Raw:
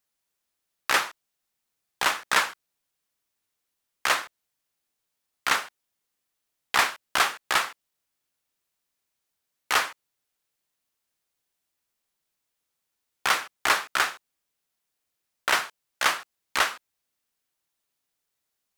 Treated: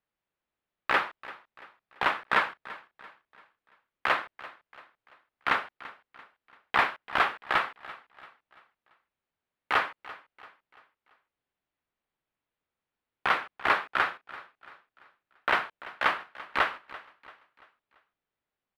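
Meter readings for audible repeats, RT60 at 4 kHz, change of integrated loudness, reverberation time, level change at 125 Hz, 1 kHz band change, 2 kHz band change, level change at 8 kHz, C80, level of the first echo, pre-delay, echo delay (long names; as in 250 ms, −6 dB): 3, no reverb audible, −3.0 dB, no reverb audible, +1.5 dB, −1.0 dB, −2.5 dB, below −20 dB, no reverb audible, −18.0 dB, no reverb audible, 339 ms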